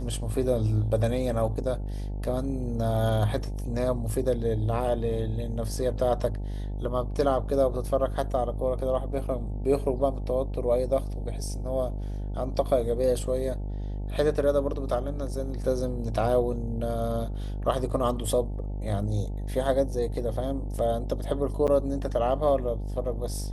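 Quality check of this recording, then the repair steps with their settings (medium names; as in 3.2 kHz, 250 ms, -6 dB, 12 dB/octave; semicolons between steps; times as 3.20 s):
buzz 50 Hz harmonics 18 -32 dBFS
21.67–21.68 s: dropout 7.9 ms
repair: de-hum 50 Hz, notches 18; interpolate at 21.67 s, 7.9 ms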